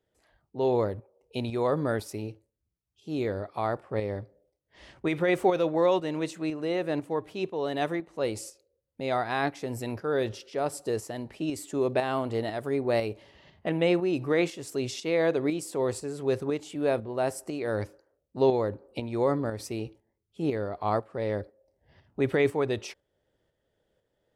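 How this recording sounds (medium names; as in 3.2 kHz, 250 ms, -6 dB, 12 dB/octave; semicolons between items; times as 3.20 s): tremolo saw up 2 Hz, depth 50%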